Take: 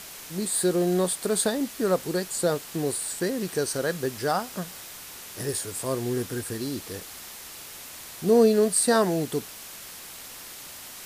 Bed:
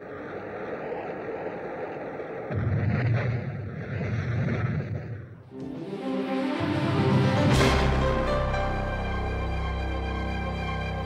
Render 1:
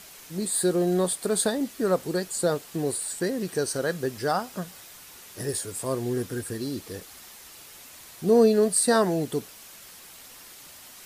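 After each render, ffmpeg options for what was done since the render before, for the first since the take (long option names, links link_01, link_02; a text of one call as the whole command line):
ffmpeg -i in.wav -af "afftdn=noise_reduction=6:noise_floor=-42" out.wav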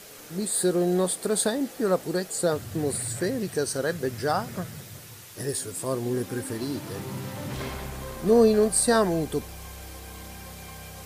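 ffmpeg -i in.wav -i bed.wav -filter_complex "[1:a]volume=-13dB[link_01];[0:a][link_01]amix=inputs=2:normalize=0" out.wav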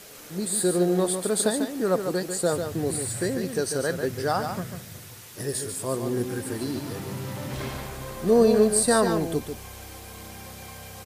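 ffmpeg -i in.wav -af "aecho=1:1:145:0.447" out.wav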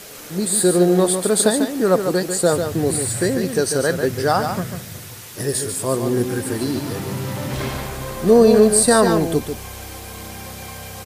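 ffmpeg -i in.wav -af "volume=7.5dB,alimiter=limit=-3dB:level=0:latency=1" out.wav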